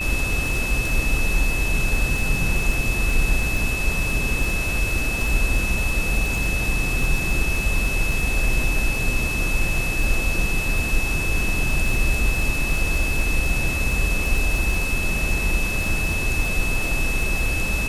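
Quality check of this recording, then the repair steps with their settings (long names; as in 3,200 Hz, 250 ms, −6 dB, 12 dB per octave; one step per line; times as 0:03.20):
surface crackle 33 per second −25 dBFS
whistle 2,600 Hz −25 dBFS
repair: click removal
notch filter 2,600 Hz, Q 30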